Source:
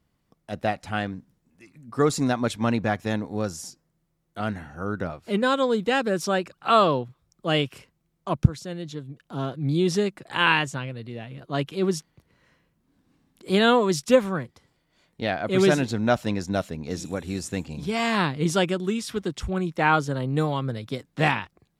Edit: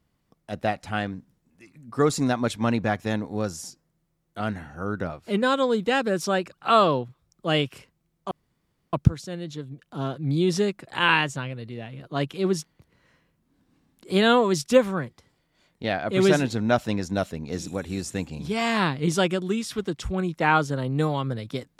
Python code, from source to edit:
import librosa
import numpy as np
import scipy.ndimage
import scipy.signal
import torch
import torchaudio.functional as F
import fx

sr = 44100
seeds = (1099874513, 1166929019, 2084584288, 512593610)

y = fx.edit(x, sr, fx.insert_room_tone(at_s=8.31, length_s=0.62), tone=tone)